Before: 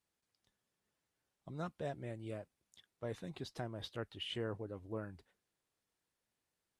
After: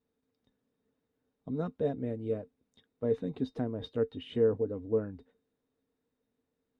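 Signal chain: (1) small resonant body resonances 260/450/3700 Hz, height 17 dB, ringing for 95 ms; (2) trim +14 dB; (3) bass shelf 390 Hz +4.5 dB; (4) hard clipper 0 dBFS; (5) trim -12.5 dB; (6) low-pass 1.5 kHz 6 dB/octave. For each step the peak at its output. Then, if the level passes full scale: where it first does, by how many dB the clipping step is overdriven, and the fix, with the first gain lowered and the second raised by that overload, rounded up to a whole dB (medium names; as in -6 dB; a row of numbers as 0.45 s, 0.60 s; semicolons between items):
-19.0 dBFS, -5.0 dBFS, -3.0 dBFS, -3.0 dBFS, -15.5 dBFS, -16.0 dBFS; nothing clips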